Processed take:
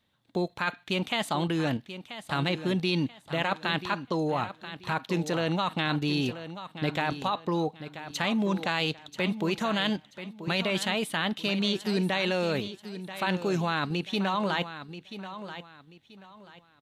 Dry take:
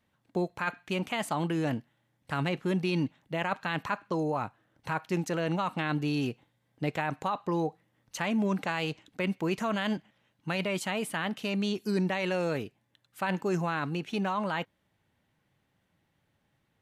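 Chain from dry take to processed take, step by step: bell 3700 Hz +11.5 dB 0.51 oct; in parallel at +2 dB: level quantiser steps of 17 dB; on the sum: feedback echo 0.984 s, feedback 28%, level -12 dB; gain -3 dB

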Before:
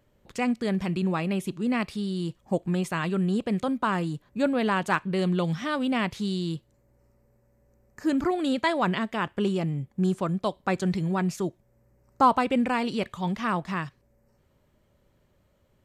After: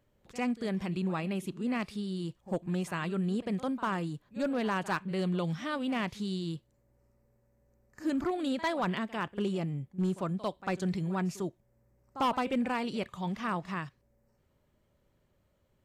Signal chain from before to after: pre-echo 49 ms -17 dB; hard clip -17.5 dBFS, distortion -18 dB; gain -6 dB

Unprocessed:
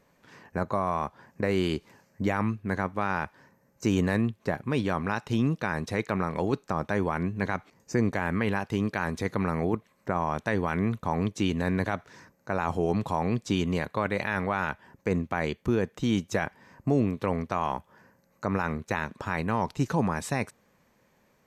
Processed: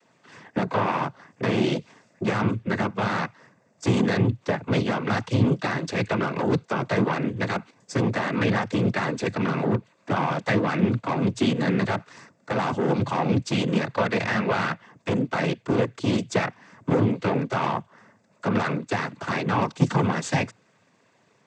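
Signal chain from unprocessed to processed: added harmonics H 6 -17 dB, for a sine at -12.5 dBFS; noise vocoder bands 16; gain +3.5 dB

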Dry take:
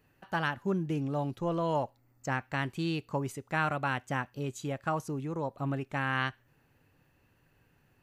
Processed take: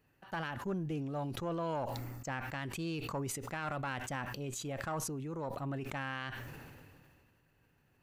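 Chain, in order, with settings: one diode to ground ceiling -25 dBFS; limiter -22.5 dBFS, peak gain reduction 6 dB; sustainer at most 27 dB/s; gain -4.5 dB

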